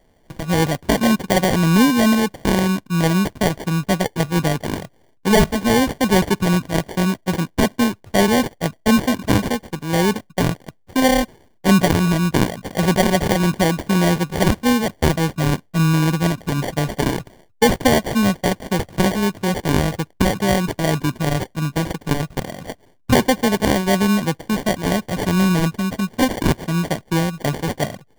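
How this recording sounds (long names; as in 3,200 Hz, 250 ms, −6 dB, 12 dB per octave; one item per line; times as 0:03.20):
aliases and images of a low sample rate 1,300 Hz, jitter 0%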